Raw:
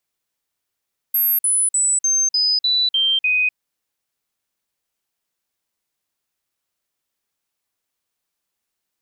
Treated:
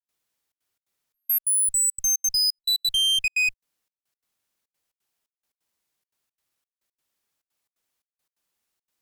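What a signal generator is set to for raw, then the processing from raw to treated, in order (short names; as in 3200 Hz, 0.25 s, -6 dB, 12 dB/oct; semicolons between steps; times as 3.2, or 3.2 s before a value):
stepped sine 12600 Hz down, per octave 3, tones 8, 0.25 s, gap 0.05 s -14.5 dBFS
one-sided clip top -23 dBFS, bottom -17 dBFS; step gate ".xxxxx.xx.xxx..x" 174 bpm -60 dB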